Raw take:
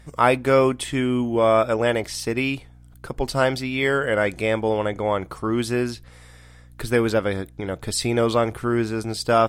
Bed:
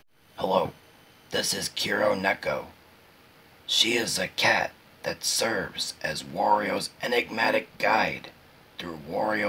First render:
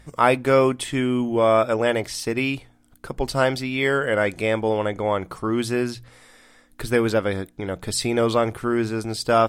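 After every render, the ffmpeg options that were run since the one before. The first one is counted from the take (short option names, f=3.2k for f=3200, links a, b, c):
-af "bandreject=f=60:t=h:w=4,bandreject=f=120:t=h:w=4,bandreject=f=180:t=h:w=4"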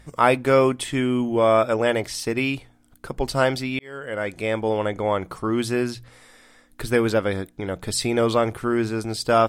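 -filter_complex "[0:a]asplit=2[a][b];[a]atrim=end=3.79,asetpts=PTS-STARTPTS,afade=t=out:st=3.786:d=0.004:c=hsin[c];[b]atrim=start=3.79,asetpts=PTS-STARTPTS,afade=t=in:d=1.28:c=qsin[d];[c][d]concat=n=2:v=0:a=1"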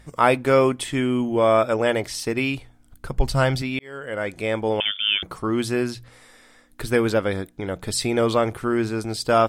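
-filter_complex "[0:a]asettb=1/sr,asplit=3[a][b][c];[a]atrim=end=2.404[d];[b]atrim=start=2.4:end=3.62,asetpts=PTS-STARTPTS,afade=t=in:d=0.004:c=qsin,afade=t=out:st=1.216:d=0.004:c=qsin,asubboost=boost=10.5:cutoff=150[e];[c]atrim=start=3.616[f];[d][e]acrossfade=d=0.004:c1=hsin:c2=qsin[g];[g][f]acrossfade=d=0.004:c1=qsin:c2=hsin,asettb=1/sr,asplit=3[h][i][j];[h]atrim=end=4.804[k];[i]atrim=start=4.8:end=5.23,asetpts=PTS-STARTPTS,afade=t=in:d=0.004:c=qsin,afade=t=out:st=0.426:d=0.004:c=qsin,lowpass=f=3.1k:t=q:w=0.5098,lowpass=f=3.1k:t=q:w=0.6013,lowpass=f=3.1k:t=q:w=0.9,lowpass=f=3.1k:t=q:w=2.563,afreqshift=-3600[l];[j]atrim=start=5.226[m];[k][l]acrossfade=d=0.004:c1=hsin:c2=qsin[n];[n][m]acrossfade=d=0.004:c1=qsin:c2=hsin"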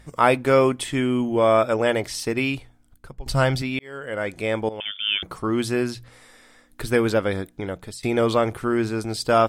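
-filter_complex "[0:a]asplit=4[a][b][c][d];[a]atrim=end=3.26,asetpts=PTS-STARTPTS,afade=t=out:st=2.54:d=0.72:silence=0.0944061[e];[b]atrim=start=3.26:end=4.69,asetpts=PTS-STARTPTS,afade=t=in:d=0.004:c=hsin:silence=0.0944061,afade=t=out:st=1.426:d=0.004:c=hsin:silence=0.177828[f];[c]atrim=start=4.69:end=8.03,asetpts=PTS-STARTPTS,afade=t=in:d=0.79:c=qsin:silence=0.177828,afade=t=out:st=2.93:d=0.41:silence=0.0749894[g];[d]atrim=start=8.03,asetpts=PTS-STARTPTS,afade=t=in:d=0.004:c=hsin:silence=0.0749894[h];[e][f][g][h]concat=n=4:v=0:a=1"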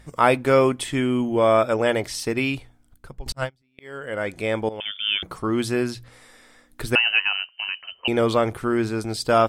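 -filter_complex "[0:a]asettb=1/sr,asplit=3[a][b][c];[a]atrim=end=3.324[d];[b]atrim=start=3.32:end=3.79,asetpts=PTS-STARTPTS,afade=t=in:d=0.004:c=qsin,afade=t=out:st=0.466:d=0.004:c=qsin,agate=range=-41dB:threshold=-17dB:ratio=16:release=100:detection=peak[e];[c]atrim=start=3.786[f];[d][e]acrossfade=d=0.004:c1=hsin:c2=qsin[g];[g][f]acrossfade=d=0.004:c1=qsin:c2=hsin,asettb=1/sr,asplit=3[h][i][j];[h]atrim=end=6.954[k];[i]atrim=start=6.95:end=8.08,asetpts=PTS-STARTPTS,afade=t=in:d=0.004:c=qsin,afade=t=out:st=1.126:d=0.004:c=qsin,lowpass=f=2.6k:t=q:w=0.5098,lowpass=f=2.6k:t=q:w=0.6013,lowpass=f=2.6k:t=q:w=0.9,lowpass=f=2.6k:t=q:w=2.563,afreqshift=-3100[l];[j]atrim=start=8.076[m];[k][l]acrossfade=d=0.004:c1=hsin:c2=qsin[n];[n][m]acrossfade=d=0.004:c1=qsin:c2=hsin"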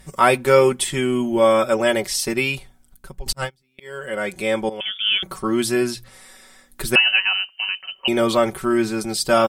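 -af "aemphasis=mode=production:type=cd,aecho=1:1:5.3:0.8"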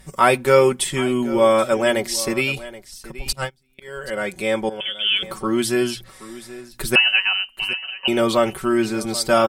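-af "aecho=1:1:777:0.141"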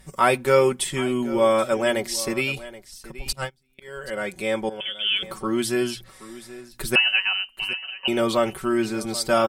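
-af "volume=-3.5dB"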